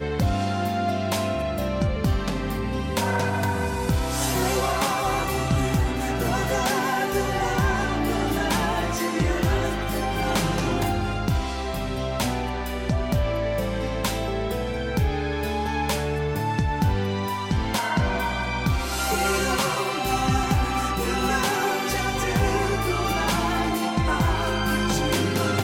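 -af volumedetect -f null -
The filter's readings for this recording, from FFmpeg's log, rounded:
mean_volume: -23.9 dB
max_volume: -11.3 dB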